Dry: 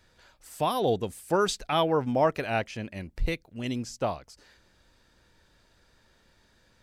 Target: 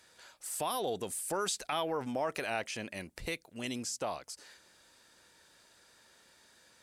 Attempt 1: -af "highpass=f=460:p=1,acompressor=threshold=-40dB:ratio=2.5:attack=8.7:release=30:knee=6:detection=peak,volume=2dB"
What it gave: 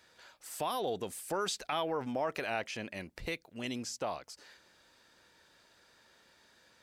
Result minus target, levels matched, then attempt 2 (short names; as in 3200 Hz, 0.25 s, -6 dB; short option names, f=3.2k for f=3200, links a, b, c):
8000 Hz band -5.0 dB
-af "highpass=f=460:p=1,equalizer=f=9.4k:t=o:w=1:g=10,acompressor=threshold=-40dB:ratio=2.5:attack=8.7:release=30:knee=6:detection=peak,volume=2dB"